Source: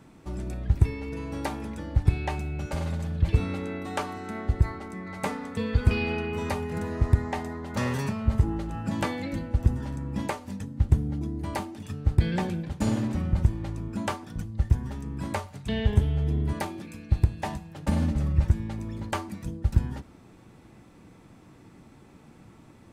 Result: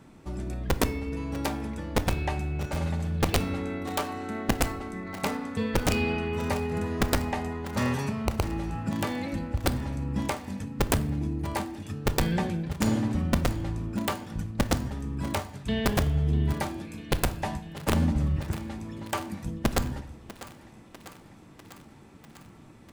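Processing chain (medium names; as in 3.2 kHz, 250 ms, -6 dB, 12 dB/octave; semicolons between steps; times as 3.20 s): 7.93–9.64 s: compression 2:1, threshold -27 dBFS, peak gain reduction 7.5 dB; 18.36–19.20 s: high-pass 240 Hz 6 dB/octave; integer overflow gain 15.5 dB; thinning echo 647 ms, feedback 73%, high-pass 380 Hz, level -14.5 dB; reverberation RT60 0.70 s, pre-delay 5 ms, DRR 12 dB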